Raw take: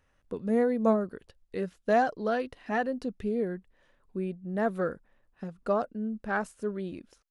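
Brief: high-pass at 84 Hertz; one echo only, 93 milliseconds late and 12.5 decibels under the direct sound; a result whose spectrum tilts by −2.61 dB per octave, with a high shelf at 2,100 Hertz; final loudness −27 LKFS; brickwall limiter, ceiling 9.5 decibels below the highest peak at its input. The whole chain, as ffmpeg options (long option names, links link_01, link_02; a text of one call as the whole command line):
ffmpeg -i in.wav -af "highpass=84,highshelf=frequency=2100:gain=9,alimiter=limit=-20dB:level=0:latency=1,aecho=1:1:93:0.237,volume=5.5dB" out.wav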